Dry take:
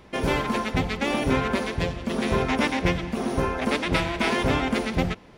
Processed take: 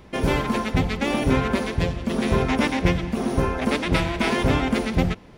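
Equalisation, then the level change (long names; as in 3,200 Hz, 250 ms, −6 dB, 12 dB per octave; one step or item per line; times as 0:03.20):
low-shelf EQ 280 Hz +5.5 dB
high-shelf EQ 9,400 Hz +3.5 dB
0.0 dB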